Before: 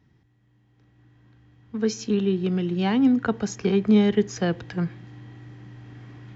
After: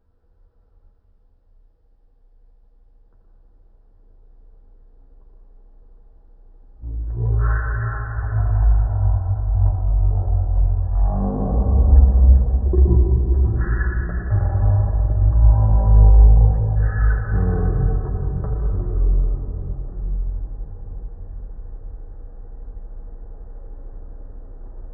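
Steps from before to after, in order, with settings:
rectangular room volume 1,700 cubic metres, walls mixed, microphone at 3.2 metres
change of speed 0.255×

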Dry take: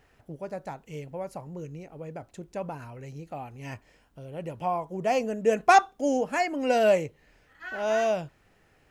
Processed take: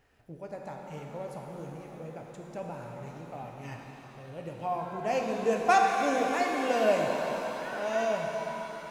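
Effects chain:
reverb with rising layers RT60 3.8 s, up +7 semitones, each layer −8 dB, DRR 0.5 dB
level −5.5 dB

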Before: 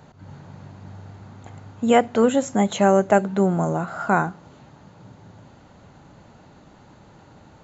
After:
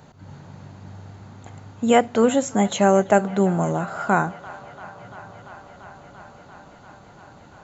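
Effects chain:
high-shelf EQ 4,600 Hz +4.5 dB
on a send: delay with a band-pass on its return 342 ms, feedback 85%, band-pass 1,400 Hz, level −18 dB

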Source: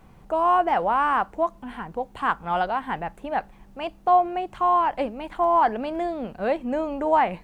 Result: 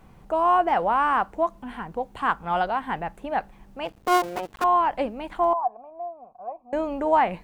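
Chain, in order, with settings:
0:03.85–0:04.64: sub-harmonics by changed cycles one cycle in 2, muted
0:05.53–0:06.73: formant resonators in series a

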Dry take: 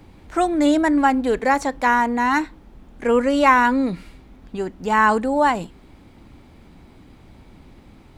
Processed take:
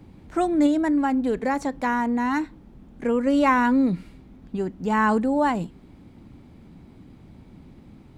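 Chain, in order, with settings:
parametric band 170 Hz +10 dB 2.4 octaves
0:00.66–0:03.27: downward compressor 2 to 1, threshold −14 dBFS, peak gain reduction 4.5 dB
level −7 dB

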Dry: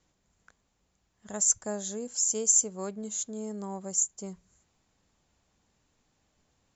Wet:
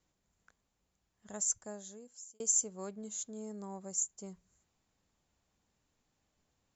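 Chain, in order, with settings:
0:01.32–0:02.40: fade out
0:03.42–0:03.98: notch filter 3,100 Hz, Q 9.1
level −7 dB

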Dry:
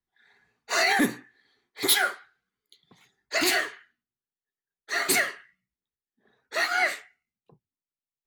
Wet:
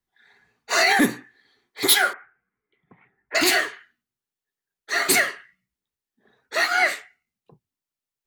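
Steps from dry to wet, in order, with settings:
0:02.13–0:03.35: Butterworth low-pass 2,400 Hz 48 dB per octave
level +4.5 dB

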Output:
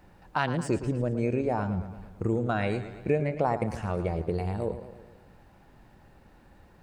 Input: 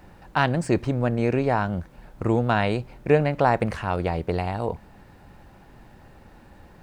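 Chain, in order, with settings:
noise reduction from a noise print of the clip's start 10 dB
downward compressor 2 to 1, threshold −33 dBFS, peak gain reduction 11 dB
feedback echo with a swinging delay time 112 ms, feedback 57%, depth 93 cents, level −12 dB
level +3 dB

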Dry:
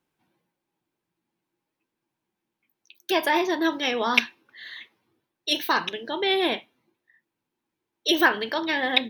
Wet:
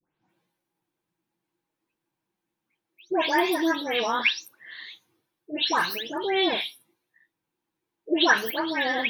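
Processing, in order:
every frequency bin delayed by itself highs late, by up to 288 ms

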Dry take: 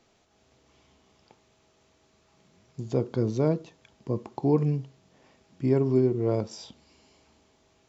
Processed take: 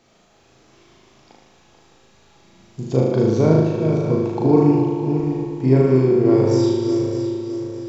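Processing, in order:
feedback delay that plays each chunk backwards 306 ms, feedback 60%, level −7 dB
flutter between parallel walls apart 6.5 metres, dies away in 0.99 s
spring reverb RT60 3 s, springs 32/47 ms, chirp 40 ms, DRR 5.5 dB
level +5.5 dB

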